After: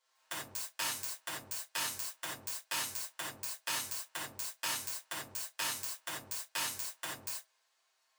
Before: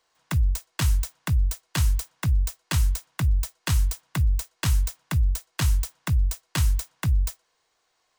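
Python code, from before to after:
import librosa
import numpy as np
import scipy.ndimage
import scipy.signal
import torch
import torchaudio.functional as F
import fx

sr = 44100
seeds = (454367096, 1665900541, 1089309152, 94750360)

y = fx.lower_of_two(x, sr, delay_ms=7.6)
y = scipy.signal.sosfilt(scipy.signal.butter(2, 710.0, 'highpass', fs=sr, output='sos'), y)
y = fx.rev_gated(y, sr, seeds[0], gate_ms=110, shape='flat', drr_db=-4.5)
y = y * 10.0 ** (-8.0 / 20.0)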